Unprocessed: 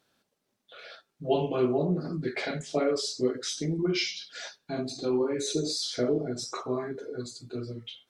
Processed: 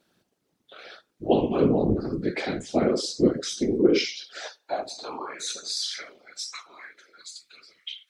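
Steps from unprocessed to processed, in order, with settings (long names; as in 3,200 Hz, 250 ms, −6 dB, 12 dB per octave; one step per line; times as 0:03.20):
high-pass filter sweep 230 Hz → 2,200 Hz, 0:03.39–0:06.17
random phases in short frames
level +1.5 dB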